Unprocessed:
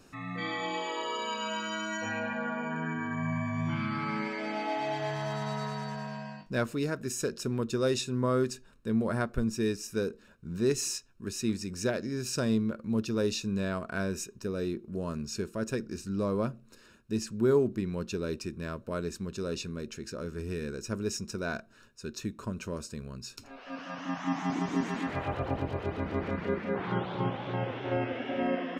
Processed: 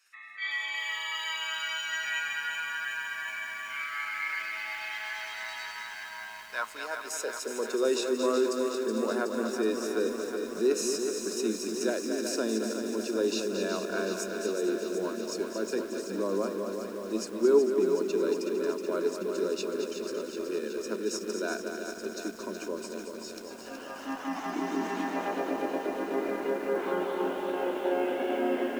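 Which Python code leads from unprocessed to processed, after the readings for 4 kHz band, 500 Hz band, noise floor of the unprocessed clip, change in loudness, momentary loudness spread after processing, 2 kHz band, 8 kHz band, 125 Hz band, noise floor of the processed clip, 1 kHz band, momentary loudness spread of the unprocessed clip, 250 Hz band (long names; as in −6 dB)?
+3.0 dB, +4.0 dB, −57 dBFS, +1.5 dB, 9 LU, +4.5 dB, +2.0 dB, below −15 dB, −42 dBFS, 0.0 dB, 10 LU, −1.0 dB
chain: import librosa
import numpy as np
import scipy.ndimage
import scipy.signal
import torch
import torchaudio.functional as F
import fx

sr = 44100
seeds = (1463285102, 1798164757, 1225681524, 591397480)

p1 = scipy.signal.sosfilt(scipy.signal.cheby1(8, 1.0, 180.0, 'highpass', fs=sr, output='sos'), x)
p2 = fx.noise_reduce_blind(p1, sr, reduce_db=7)
p3 = fx.dynamic_eq(p2, sr, hz=370.0, q=0.91, threshold_db=-40.0, ratio=4.0, max_db=-3)
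p4 = fx.level_steps(p3, sr, step_db=13)
p5 = p3 + F.gain(torch.from_numpy(p4), -2.5).numpy()
p6 = fx.filter_sweep_highpass(p5, sr, from_hz=1900.0, to_hz=340.0, start_s=5.82, end_s=7.94, q=2.4)
p7 = p6 + fx.echo_feedback(p6, sr, ms=226, feedback_pct=48, wet_db=-7.5, dry=0)
p8 = fx.echo_crushed(p7, sr, ms=372, feedback_pct=80, bits=8, wet_db=-7)
y = F.gain(torch.from_numpy(p8), -3.0).numpy()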